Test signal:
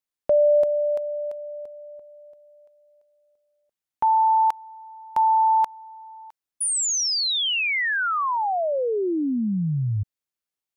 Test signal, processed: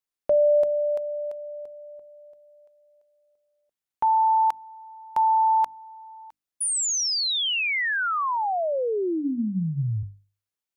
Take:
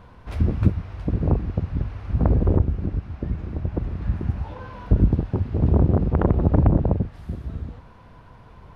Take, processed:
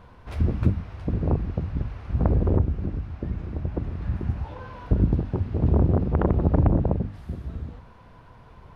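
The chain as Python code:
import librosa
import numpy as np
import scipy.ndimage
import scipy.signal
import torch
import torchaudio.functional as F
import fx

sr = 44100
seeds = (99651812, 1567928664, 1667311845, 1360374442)

y = fx.hum_notches(x, sr, base_hz=50, count=6)
y = y * 10.0 ** (-1.5 / 20.0)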